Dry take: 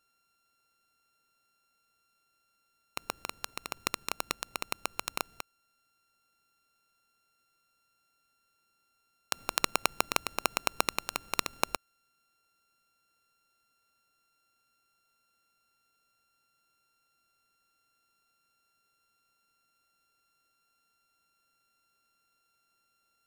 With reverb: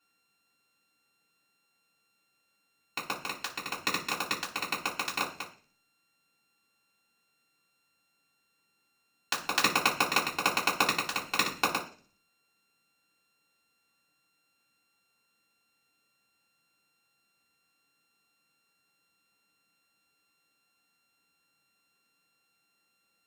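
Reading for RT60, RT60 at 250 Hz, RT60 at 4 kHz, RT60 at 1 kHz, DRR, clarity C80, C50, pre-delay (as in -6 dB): 0.40 s, 0.65 s, 0.55 s, 0.40 s, -8.0 dB, 15.5 dB, 10.5 dB, 3 ms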